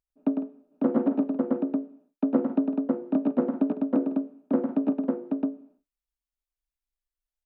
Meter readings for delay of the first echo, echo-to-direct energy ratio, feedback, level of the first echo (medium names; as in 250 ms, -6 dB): 103 ms, -1.0 dB, no regular repeats, -5.5 dB